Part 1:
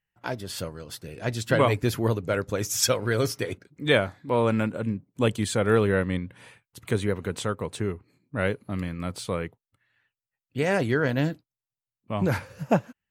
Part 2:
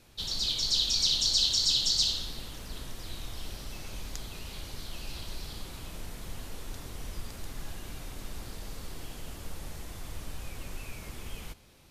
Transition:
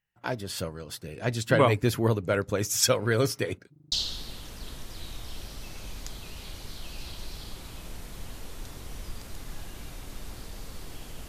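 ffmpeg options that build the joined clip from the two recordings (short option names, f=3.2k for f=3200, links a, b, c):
-filter_complex "[0:a]apad=whole_dur=11.28,atrim=end=11.28,asplit=5[a][b][c][d][e];[a]atrim=end=3.762[f];[b]atrim=start=3.718:end=3.762[g];[c]atrim=start=3.718:end=3.762[h];[d]atrim=start=3.718:end=3.762[i];[e]atrim=start=3.718:end=3.762[j];[1:a]atrim=start=2.008:end=9.37[k];[f][g]acrossfade=d=0.004:c1=hsin:c2=hsin[l];[l][h]acrossfade=d=0.004:c1=hsin:c2=hsin[m];[m][i]acrossfade=d=0.004:c1=hsin:c2=hsin[n];[n][j]acrossfade=d=0.004:c1=hsin:c2=hsin[o];[o][k]acrossfade=d=0.004:c1=hsin:c2=hsin"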